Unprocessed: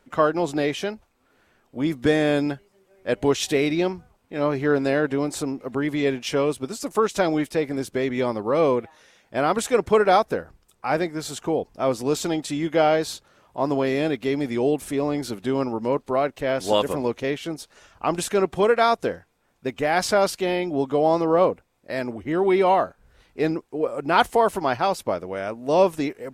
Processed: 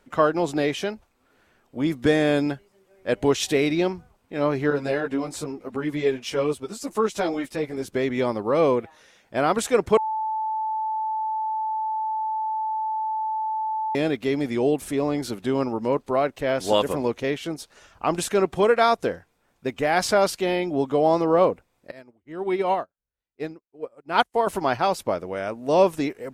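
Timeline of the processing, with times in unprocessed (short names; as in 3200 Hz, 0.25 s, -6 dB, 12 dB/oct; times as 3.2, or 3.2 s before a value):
4.7–7.88 ensemble effect
9.97–13.95 bleep 874 Hz -23.5 dBFS
21.91–24.47 upward expander 2.5:1, over -38 dBFS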